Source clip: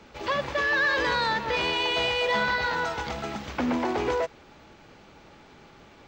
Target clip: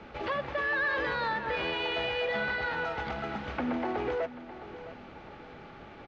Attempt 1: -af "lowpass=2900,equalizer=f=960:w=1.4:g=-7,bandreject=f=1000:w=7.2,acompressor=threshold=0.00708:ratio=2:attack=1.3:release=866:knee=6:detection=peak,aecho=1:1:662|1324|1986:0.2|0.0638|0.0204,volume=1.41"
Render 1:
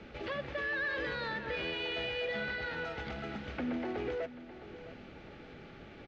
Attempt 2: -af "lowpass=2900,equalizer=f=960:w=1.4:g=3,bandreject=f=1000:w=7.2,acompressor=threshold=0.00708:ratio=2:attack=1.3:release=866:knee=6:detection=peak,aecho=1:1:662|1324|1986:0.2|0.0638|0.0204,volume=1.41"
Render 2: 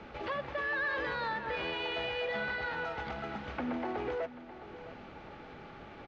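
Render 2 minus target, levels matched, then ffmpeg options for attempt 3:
compression: peak gain reduction +4 dB
-af "lowpass=2900,equalizer=f=960:w=1.4:g=3,bandreject=f=1000:w=7.2,acompressor=threshold=0.0178:ratio=2:attack=1.3:release=866:knee=6:detection=peak,aecho=1:1:662|1324|1986:0.2|0.0638|0.0204,volume=1.41"

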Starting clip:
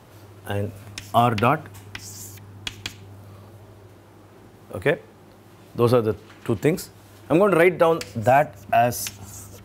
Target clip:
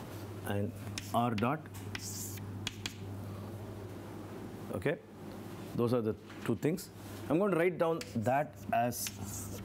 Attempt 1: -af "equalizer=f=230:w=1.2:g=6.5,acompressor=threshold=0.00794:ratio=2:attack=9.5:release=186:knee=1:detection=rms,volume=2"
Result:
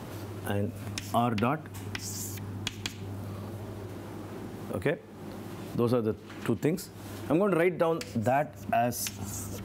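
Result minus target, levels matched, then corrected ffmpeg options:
compression: peak gain reduction -4.5 dB
-af "equalizer=f=230:w=1.2:g=6.5,acompressor=threshold=0.00282:ratio=2:attack=9.5:release=186:knee=1:detection=rms,volume=2"

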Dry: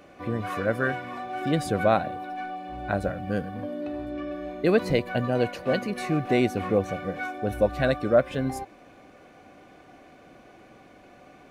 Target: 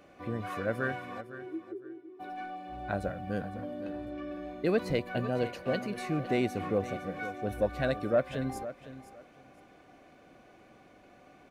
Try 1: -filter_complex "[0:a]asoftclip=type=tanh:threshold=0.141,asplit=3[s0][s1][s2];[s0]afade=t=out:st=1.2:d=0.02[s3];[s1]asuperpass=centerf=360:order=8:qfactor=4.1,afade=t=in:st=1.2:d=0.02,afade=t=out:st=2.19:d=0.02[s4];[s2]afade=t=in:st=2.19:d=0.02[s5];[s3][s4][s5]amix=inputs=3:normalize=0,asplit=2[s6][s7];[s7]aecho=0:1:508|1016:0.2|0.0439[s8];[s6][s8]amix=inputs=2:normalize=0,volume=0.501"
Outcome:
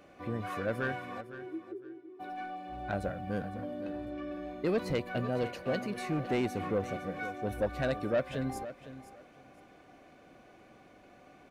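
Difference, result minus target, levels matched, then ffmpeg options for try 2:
saturation: distortion +13 dB
-filter_complex "[0:a]asoftclip=type=tanh:threshold=0.398,asplit=3[s0][s1][s2];[s0]afade=t=out:st=1.2:d=0.02[s3];[s1]asuperpass=centerf=360:order=8:qfactor=4.1,afade=t=in:st=1.2:d=0.02,afade=t=out:st=2.19:d=0.02[s4];[s2]afade=t=in:st=2.19:d=0.02[s5];[s3][s4][s5]amix=inputs=3:normalize=0,asplit=2[s6][s7];[s7]aecho=0:1:508|1016:0.2|0.0439[s8];[s6][s8]amix=inputs=2:normalize=0,volume=0.501"

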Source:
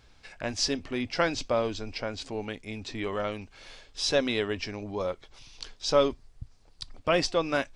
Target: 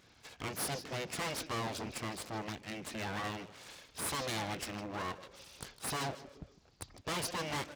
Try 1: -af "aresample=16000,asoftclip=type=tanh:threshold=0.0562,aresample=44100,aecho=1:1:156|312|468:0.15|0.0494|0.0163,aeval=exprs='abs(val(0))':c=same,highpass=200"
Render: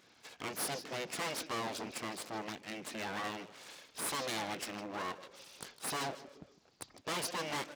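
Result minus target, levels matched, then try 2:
125 Hz band -7.0 dB
-af "aresample=16000,asoftclip=type=tanh:threshold=0.0562,aresample=44100,aecho=1:1:156|312|468:0.15|0.0494|0.0163,aeval=exprs='abs(val(0))':c=same,highpass=76"

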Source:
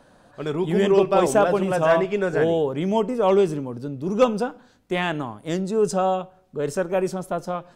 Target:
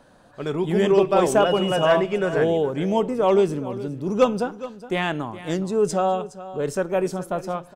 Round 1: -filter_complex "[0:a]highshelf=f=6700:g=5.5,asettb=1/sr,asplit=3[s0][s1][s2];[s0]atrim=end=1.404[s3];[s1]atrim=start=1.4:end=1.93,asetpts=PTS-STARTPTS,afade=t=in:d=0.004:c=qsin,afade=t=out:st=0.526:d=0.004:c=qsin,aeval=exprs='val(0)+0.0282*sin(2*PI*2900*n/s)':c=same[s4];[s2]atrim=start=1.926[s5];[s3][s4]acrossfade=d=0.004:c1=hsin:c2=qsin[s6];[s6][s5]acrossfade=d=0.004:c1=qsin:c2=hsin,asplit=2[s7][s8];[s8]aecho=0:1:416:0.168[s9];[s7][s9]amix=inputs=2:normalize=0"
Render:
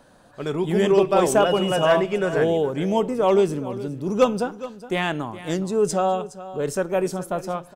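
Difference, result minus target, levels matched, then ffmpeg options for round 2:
8 kHz band +3.0 dB
-filter_complex "[0:a]asettb=1/sr,asplit=3[s0][s1][s2];[s0]atrim=end=1.404[s3];[s1]atrim=start=1.4:end=1.93,asetpts=PTS-STARTPTS,afade=t=in:d=0.004:c=qsin,afade=t=out:st=0.526:d=0.004:c=qsin,aeval=exprs='val(0)+0.0282*sin(2*PI*2900*n/s)':c=same[s4];[s2]atrim=start=1.926[s5];[s3][s4]acrossfade=d=0.004:c1=hsin:c2=qsin[s6];[s6][s5]acrossfade=d=0.004:c1=qsin:c2=hsin,asplit=2[s7][s8];[s8]aecho=0:1:416:0.168[s9];[s7][s9]amix=inputs=2:normalize=0"

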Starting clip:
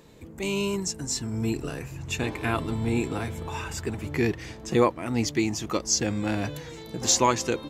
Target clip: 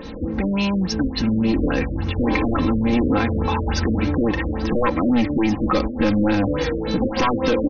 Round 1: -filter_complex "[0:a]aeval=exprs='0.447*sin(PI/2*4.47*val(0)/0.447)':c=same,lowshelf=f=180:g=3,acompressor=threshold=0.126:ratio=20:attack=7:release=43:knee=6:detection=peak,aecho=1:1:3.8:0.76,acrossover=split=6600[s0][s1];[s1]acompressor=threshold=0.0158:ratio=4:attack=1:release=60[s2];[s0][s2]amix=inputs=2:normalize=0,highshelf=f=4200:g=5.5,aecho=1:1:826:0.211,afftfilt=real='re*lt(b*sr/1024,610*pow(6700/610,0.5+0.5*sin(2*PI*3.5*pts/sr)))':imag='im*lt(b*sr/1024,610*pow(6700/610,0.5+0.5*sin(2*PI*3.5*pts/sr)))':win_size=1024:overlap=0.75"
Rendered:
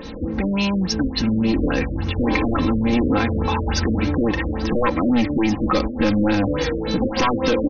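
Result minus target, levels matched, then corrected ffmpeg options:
8 kHz band +3.5 dB
-filter_complex "[0:a]aeval=exprs='0.447*sin(PI/2*4.47*val(0)/0.447)':c=same,lowshelf=f=180:g=3,acompressor=threshold=0.126:ratio=20:attack=7:release=43:knee=6:detection=peak,aecho=1:1:3.8:0.76,acrossover=split=6600[s0][s1];[s1]acompressor=threshold=0.0158:ratio=4:attack=1:release=60[s2];[s0][s2]amix=inputs=2:normalize=0,aecho=1:1:826:0.211,afftfilt=real='re*lt(b*sr/1024,610*pow(6700/610,0.5+0.5*sin(2*PI*3.5*pts/sr)))':imag='im*lt(b*sr/1024,610*pow(6700/610,0.5+0.5*sin(2*PI*3.5*pts/sr)))':win_size=1024:overlap=0.75"

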